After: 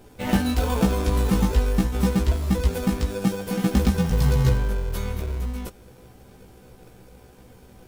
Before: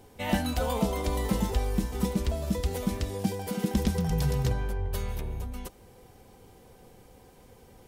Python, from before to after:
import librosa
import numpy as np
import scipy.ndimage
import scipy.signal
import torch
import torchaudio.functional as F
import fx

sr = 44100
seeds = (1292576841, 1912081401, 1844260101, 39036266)

p1 = fx.sample_hold(x, sr, seeds[0], rate_hz=1000.0, jitter_pct=0)
p2 = x + F.gain(torch.from_numpy(p1), -3.0).numpy()
y = fx.doubler(p2, sr, ms=16.0, db=-2)